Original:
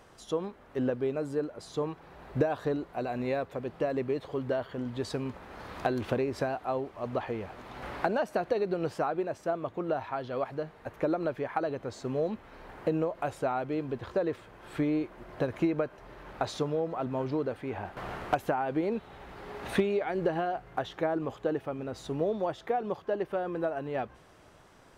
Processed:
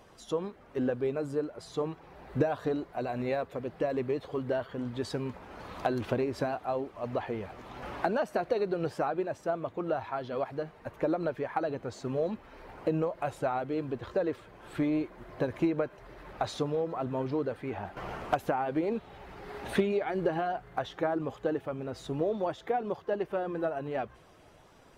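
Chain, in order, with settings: bin magnitudes rounded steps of 15 dB

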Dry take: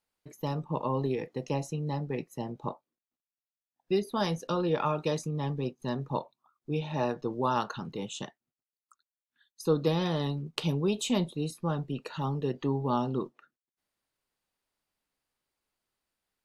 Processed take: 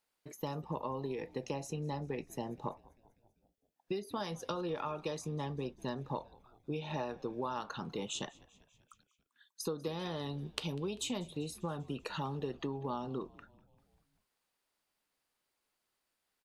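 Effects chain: low shelf 200 Hz -8 dB; compressor 10:1, threshold -36 dBFS, peak gain reduction 14.5 dB; frequency-shifting echo 0.196 s, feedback 62%, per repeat -82 Hz, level -23 dB; gain +2 dB

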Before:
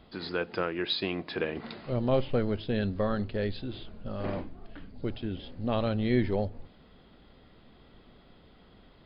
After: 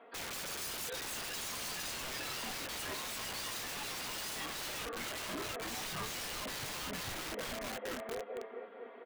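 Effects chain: regenerating reverse delay 0.223 s, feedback 77%, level -6 dB; in parallel at +3 dB: negative-ratio compressor -30 dBFS, ratio -0.5; on the sum: HPF 380 Hz 24 dB/oct; comb 4.3 ms, depth 82%; limiter -20.5 dBFS, peak gain reduction 11 dB; LPF 2200 Hz 24 dB/oct; dynamic EQ 1400 Hz, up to +5 dB, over -48 dBFS, Q 0.97; wrapped overs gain 31 dB; spectral noise reduction 7 dB; gain +1 dB

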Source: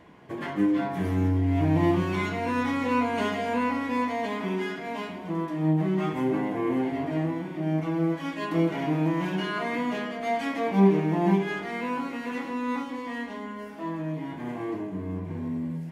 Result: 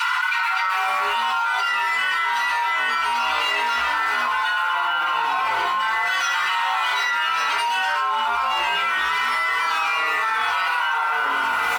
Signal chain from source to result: median filter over 5 samples; steep high-pass 730 Hz 96 dB/oct; comb 2.8 ms, depth 67%; frequency-shifting echo 0.183 s, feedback 46%, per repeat -130 Hz, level -9 dB; speed mistake 33 rpm record played at 45 rpm; FDN reverb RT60 0.79 s, low-frequency decay 1.05×, high-frequency decay 0.3×, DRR -9 dB; fast leveller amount 100%; gain -4 dB

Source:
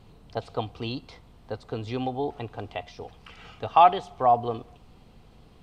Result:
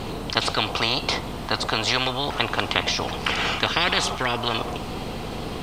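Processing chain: spectral compressor 10:1; gain +3 dB

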